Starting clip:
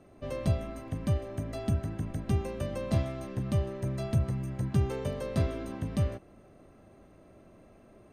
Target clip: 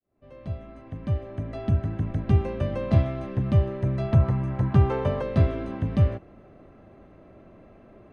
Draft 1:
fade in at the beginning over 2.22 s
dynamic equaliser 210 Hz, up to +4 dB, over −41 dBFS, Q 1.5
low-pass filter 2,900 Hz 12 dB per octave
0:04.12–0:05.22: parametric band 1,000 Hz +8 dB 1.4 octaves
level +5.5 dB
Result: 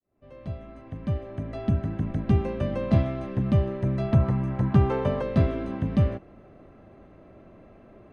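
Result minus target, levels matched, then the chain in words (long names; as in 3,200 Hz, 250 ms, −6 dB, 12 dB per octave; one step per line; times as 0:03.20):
250 Hz band +3.0 dB
fade in at the beginning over 2.22 s
dynamic equaliser 95 Hz, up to +4 dB, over −41 dBFS, Q 1.5
low-pass filter 2,900 Hz 12 dB per octave
0:04.12–0:05.22: parametric band 1,000 Hz +8 dB 1.4 octaves
level +5.5 dB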